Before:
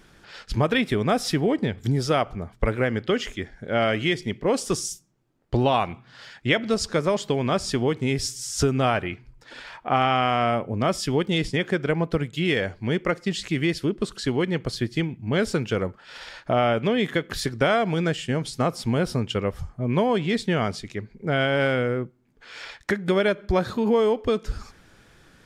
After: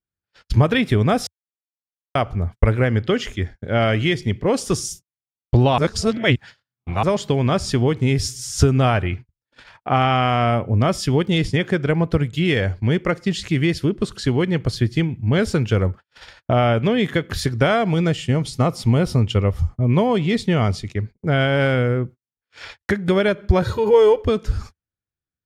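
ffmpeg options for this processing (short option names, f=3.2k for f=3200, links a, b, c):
-filter_complex "[0:a]asettb=1/sr,asplit=3[a][b][c];[a]atrim=end=17.894[d];[b]atrim=start=17.89:end=20.94,asetpts=PTS-STARTPTS,afade=t=in:d=0.004:c=qsin,afade=t=out:st=3.046:d=0.004:c=qsin,bandreject=f=1.6k:w=8[e];[c]atrim=start=20.936[f];[d][e]acrossfade=d=0.004:c1=hsin:c2=qsin[g];[g][f]acrossfade=d=0.004:c1=qsin:c2=hsin,asettb=1/sr,asplit=3[h][i][j];[h]atrim=end=23.624[k];[i]atrim=start=23.62:end=24.22,asetpts=PTS-STARTPTS,afade=t=in:d=0.004:c=qsin,afade=t=out:st=0.596:d=0.004:c=qsin,aecho=1:1:2.1:0.82,atrim=end_sample=26460[l];[j]atrim=start=24.216[m];[k][l]acrossfade=d=0.004:c1=hsin:c2=qsin[n];[n][m]acrossfade=d=0.004:c1=qsin:c2=hsin,asplit=5[o][p][q][r][s];[o]atrim=end=1.27,asetpts=PTS-STARTPTS,afade=t=out:st=1.266:d=0.004:c=hsin[t];[p]atrim=start=1.27:end=2.15,asetpts=PTS-STARTPTS,volume=0[u];[q]atrim=start=2.15:end=5.782,asetpts=PTS-STARTPTS,afade=t=in:d=0.004:c=hsin[v];[r]atrim=start=5.778:end=7.032,asetpts=PTS-STARTPTS,areverse[w];[s]atrim=start=7.028[x];[t][u][v]concat=n=3:v=0:a=1[y];[y][w]acrossfade=d=0.004:c1=hsin:c2=hsin[z];[z][x]acrossfade=d=0.004:c1=hsin:c2=hsin,agate=range=-46dB:threshold=-39dB:ratio=16:detection=peak,equalizer=f=85:w=1.1:g=13,bandreject=f=7.8k:w=29,volume=2.5dB"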